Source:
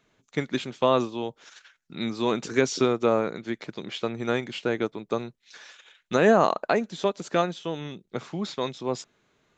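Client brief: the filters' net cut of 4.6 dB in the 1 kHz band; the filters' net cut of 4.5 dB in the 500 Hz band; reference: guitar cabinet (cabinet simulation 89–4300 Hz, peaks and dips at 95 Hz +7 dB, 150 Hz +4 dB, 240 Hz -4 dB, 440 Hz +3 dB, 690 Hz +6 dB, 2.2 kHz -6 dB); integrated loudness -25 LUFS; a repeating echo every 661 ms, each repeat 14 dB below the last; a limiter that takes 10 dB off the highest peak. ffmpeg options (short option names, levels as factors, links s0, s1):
-af "equalizer=f=500:t=o:g=-8,equalizer=f=1000:t=o:g=-6.5,alimiter=limit=0.0891:level=0:latency=1,highpass=89,equalizer=f=95:t=q:w=4:g=7,equalizer=f=150:t=q:w=4:g=4,equalizer=f=240:t=q:w=4:g=-4,equalizer=f=440:t=q:w=4:g=3,equalizer=f=690:t=q:w=4:g=6,equalizer=f=2200:t=q:w=4:g=-6,lowpass=f=4300:w=0.5412,lowpass=f=4300:w=1.3066,aecho=1:1:661|1322:0.2|0.0399,volume=3.16"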